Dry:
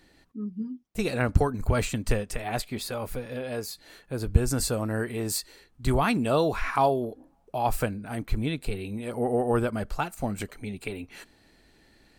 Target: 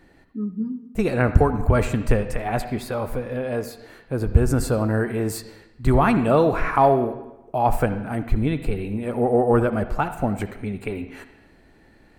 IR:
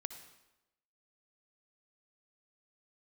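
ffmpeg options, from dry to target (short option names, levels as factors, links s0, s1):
-filter_complex "[0:a]asoftclip=type=tanh:threshold=0.422,asplit=2[s0][s1];[1:a]atrim=start_sample=2205,lowpass=2300[s2];[s1][s2]afir=irnorm=-1:irlink=0,volume=2.66[s3];[s0][s3]amix=inputs=2:normalize=0,volume=0.75"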